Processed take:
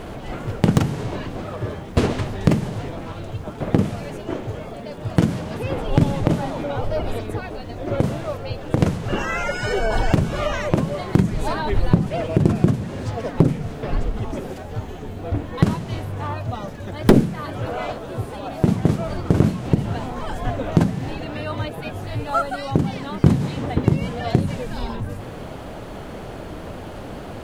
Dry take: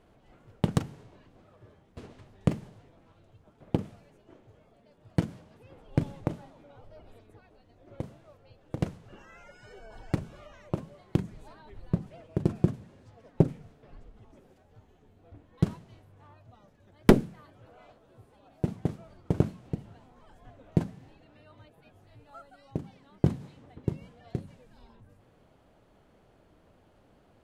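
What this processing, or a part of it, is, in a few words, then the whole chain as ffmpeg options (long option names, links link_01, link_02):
loud club master: -af "acompressor=threshold=-38dB:ratio=2,asoftclip=type=hard:threshold=-19dB,alimiter=level_in=29dB:limit=-1dB:release=50:level=0:latency=1,volume=-1dB"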